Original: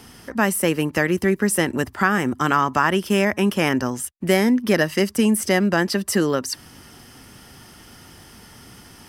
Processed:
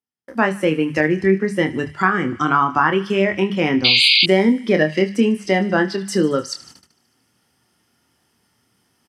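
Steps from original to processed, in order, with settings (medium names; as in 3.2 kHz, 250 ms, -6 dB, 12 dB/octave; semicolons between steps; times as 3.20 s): spectral noise reduction 10 dB; low-pass that closes with the level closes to 2.7 kHz, closed at -17.5 dBFS; doubling 26 ms -7 dB; on a send: thinning echo 75 ms, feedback 80%, high-pass 1.1 kHz, level -17 dB; on the sum: gate -45 dBFS, range -43 dB; high-pass 99 Hz; reverse; upward compressor, threshold -42 dBFS; reverse; painted sound noise, 3.84–4.26 s, 2.1–4.9 kHz -16 dBFS; hum notches 50/100/150/200 Hz; trim +2.5 dB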